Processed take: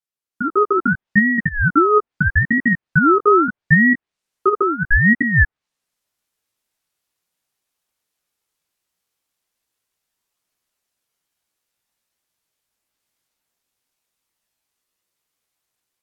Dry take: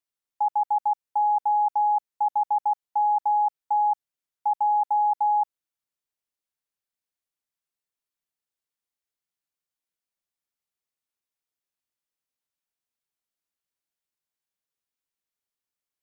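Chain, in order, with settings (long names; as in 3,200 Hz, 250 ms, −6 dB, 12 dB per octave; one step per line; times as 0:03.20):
treble cut that deepens with the level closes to 730 Hz, closed at −21 dBFS
automatic gain control gain up to 16 dB
multi-voice chorus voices 2, 0.19 Hz, delay 16 ms, depth 3.6 ms
ring modulator whose carrier an LFO sweeps 750 Hz, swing 45%, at 0.77 Hz
level +3 dB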